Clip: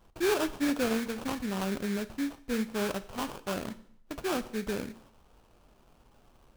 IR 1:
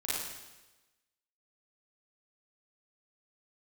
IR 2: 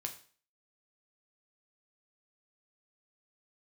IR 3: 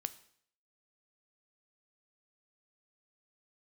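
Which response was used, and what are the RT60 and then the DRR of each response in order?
3; 1.1 s, 0.45 s, 0.60 s; -9.5 dB, 3.5 dB, 12.5 dB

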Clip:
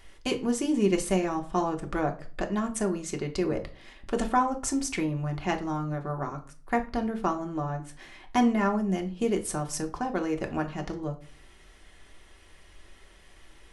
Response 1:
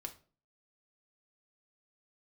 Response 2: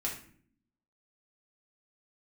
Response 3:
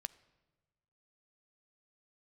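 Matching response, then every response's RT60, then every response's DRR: 1; 0.40 s, 0.55 s, 1.3 s; 2.5 dB, -4.0 dB, 14.0 dB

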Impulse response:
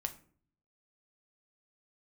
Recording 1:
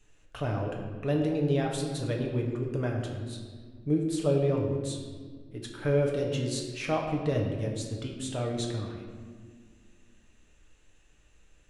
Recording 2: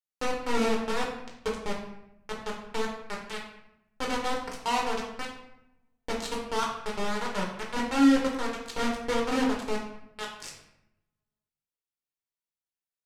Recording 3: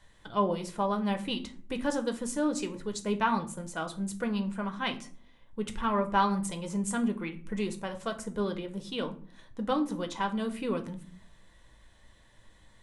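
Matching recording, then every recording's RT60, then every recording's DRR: 3; 1.8 s, 0.80 s, 0.50 s; -0.5 dB, -2.0 dB, 5.0 dB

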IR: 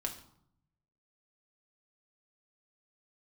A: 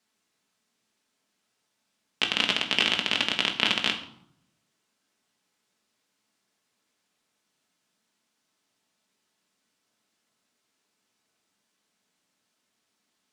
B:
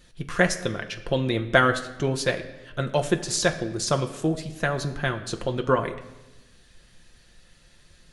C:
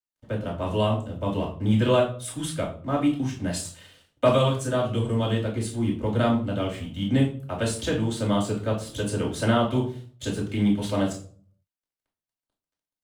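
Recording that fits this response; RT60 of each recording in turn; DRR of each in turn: A; 0.70 s, 1.0 s, 0.50 s; 2.0 dB, 4.5 dB, -4.0 dB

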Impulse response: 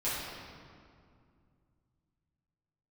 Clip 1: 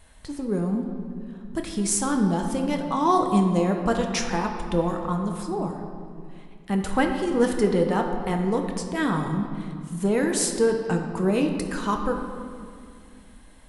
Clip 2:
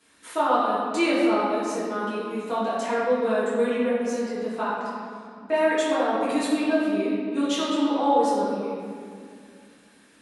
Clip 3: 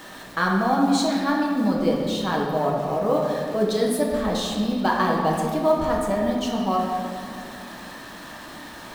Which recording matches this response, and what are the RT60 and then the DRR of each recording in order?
2; 2.3 s, 2.3 s, 2.3 s; 3.0 dB, -11.5 dB, -2.0 dB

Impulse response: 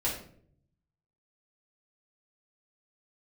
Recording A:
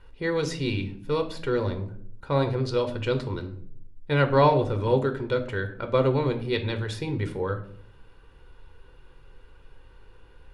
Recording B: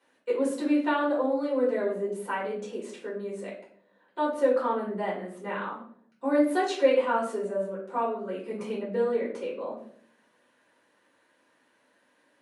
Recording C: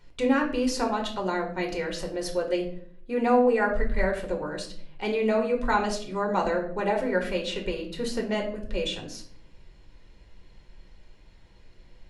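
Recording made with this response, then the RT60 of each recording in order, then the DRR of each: B; 0.60 s, 0.60 s, 0.60 s; 6.0 dB, -6.5 dB, 1.0 dB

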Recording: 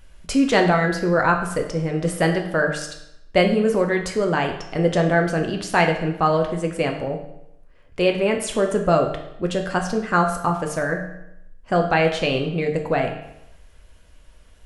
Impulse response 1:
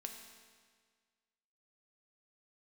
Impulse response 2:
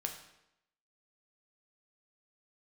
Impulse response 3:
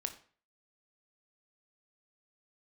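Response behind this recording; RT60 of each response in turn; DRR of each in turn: 2; 1.7 s, 0.85 s, 0.45 s; 3.0 dB, 2.5 dB, 6.5 dB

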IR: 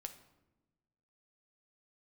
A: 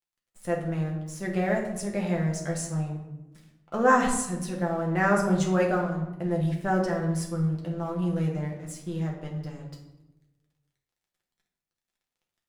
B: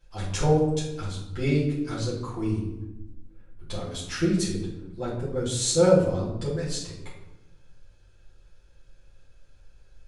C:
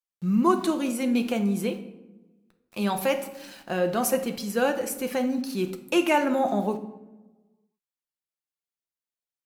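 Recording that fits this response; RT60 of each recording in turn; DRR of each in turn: C; 1.0 s, 1.0 s, 1.1 s; -1.5 dB, -9.5 dB, 6.5 dB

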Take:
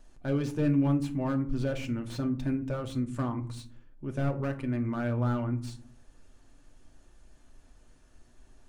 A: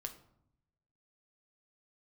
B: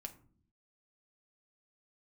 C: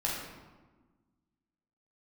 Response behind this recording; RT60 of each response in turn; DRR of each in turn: B; 0.75 s, 0.50 s, 1.3 s; 5.0 dB, 4.0 dB, -4.5 dB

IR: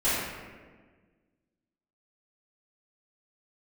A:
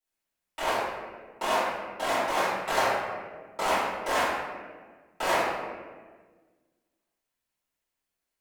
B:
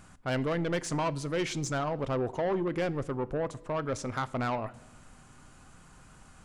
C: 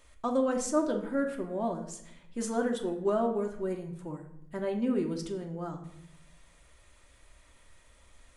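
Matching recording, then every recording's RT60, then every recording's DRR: A; 1.5 s, 1.1 s, 0.75 s; -14.5 dB, 15.5 dB, 1.5 dB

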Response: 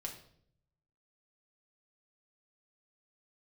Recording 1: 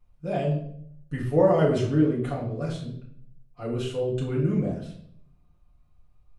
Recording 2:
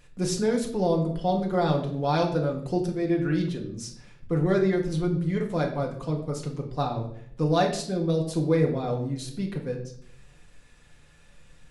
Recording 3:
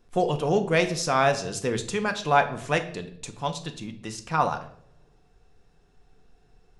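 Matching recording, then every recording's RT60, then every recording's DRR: 2; 0.65 s, 0.65 s, 0.65 s; -7.5 dB, 0.0 dB, 6.0 dB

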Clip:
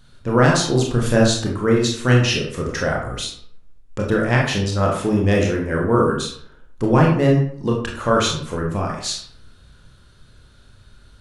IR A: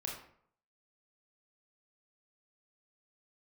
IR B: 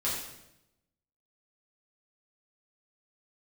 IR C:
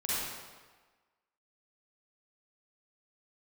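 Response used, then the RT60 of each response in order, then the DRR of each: A; 0.65 s, 0.85 s, 1.4 s; -2.0 dB, -8.5 dB, -9.5 dB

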